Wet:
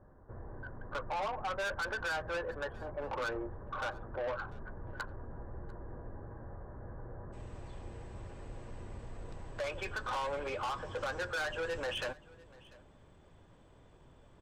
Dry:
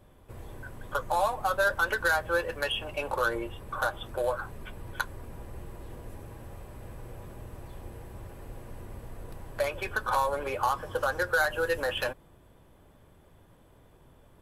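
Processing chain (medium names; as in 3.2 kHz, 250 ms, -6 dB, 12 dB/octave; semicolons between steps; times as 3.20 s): elliptic low-pass 1.7 kHz, stop band 40 dB, from 7.32 s 8 kHz; saturation -31 dBFS, distortion -7 dB; delay 694 ms -22.5 dB; trim -1.5 dB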